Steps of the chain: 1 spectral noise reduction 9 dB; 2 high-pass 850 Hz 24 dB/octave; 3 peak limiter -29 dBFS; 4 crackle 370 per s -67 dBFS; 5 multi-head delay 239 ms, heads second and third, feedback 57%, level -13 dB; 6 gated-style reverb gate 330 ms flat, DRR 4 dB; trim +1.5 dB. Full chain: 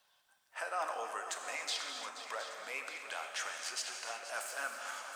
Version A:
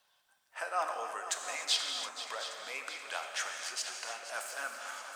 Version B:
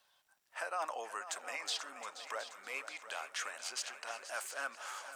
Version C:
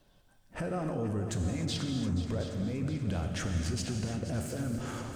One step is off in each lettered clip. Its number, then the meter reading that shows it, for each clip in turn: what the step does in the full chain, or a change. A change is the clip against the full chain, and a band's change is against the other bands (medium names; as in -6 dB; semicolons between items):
3, crest factor change +4.0 dB; 6, echo-to-direct -2.5 dB to -8.5 dB; 2, 250 Hz band +31.0 dB